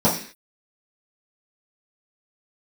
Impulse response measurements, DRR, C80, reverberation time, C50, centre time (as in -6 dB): -10.5 dB, 12.0 dB, 0.45 s, 7.5 dB, 28 ms